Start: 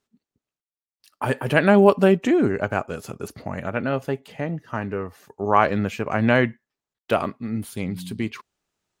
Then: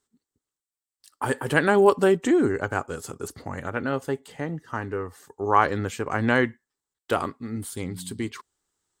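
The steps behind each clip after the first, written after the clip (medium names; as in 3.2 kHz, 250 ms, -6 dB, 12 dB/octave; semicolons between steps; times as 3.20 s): graphic EQ with 31 bands 125 Hz -6 dB, 200 Hz -10 dB, 630 Hz -9 dB, 2.5 kHz -9 dB, 8 kHz +11 dB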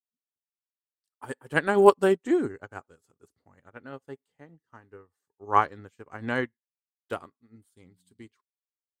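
upward expansion 2.5:1, over -37 dBFS; trim +3 dB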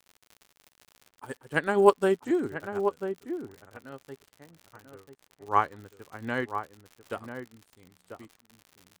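crackle 86 per s -36 dBFS; echo from a far wall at 170 m, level -8 dB; trim -2.5 dB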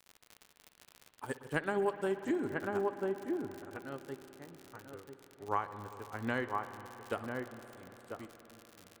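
compression 6:1, threshold -30 dBFS, peak gain reduction 17 dB; reverberation RT60 4.7 s, pre-delay 57 ms, DRR 10.5 dB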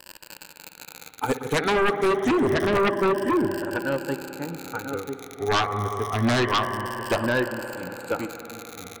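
drifting ripple filter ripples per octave 1.3, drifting -0.27 Hz, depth 13 dB; sine folder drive 13 dB, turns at -17 dBFS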